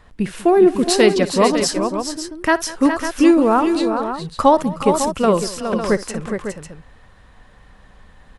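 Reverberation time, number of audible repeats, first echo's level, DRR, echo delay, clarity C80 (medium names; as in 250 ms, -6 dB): no reverb, 5, -18.5 dB, no reverb, 60 ms, no reverb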